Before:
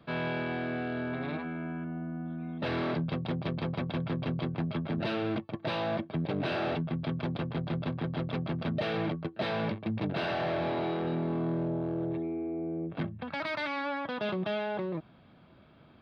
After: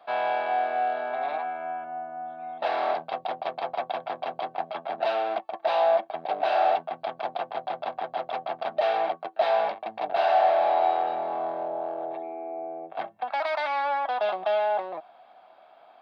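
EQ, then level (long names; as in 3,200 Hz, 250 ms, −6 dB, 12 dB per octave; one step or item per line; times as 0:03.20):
high-pass with resonance 730 Hz, resonance Q 8
+1.0 dB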